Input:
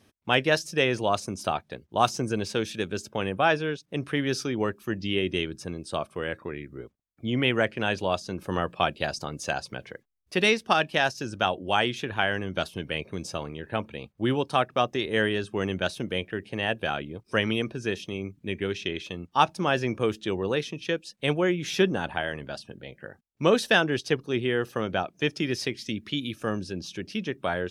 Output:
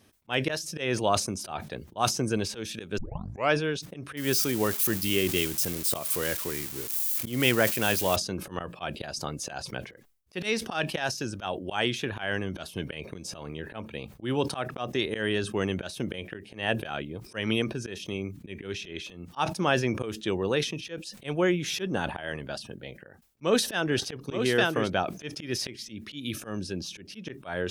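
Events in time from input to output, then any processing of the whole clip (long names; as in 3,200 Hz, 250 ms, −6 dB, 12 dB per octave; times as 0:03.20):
0:02.98: tape start 0.56 s
0:04.17–0:08.16: spike at every zero crossing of −24.5 dBFS
0:22.93–0:24.90: single-tap delay 872 ms −5.5 dB
whole clip: volume swells 160 ms; high-shelf EQ 8,700 Hz +6.5 dB; level that may fall only so fast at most 110 dB per second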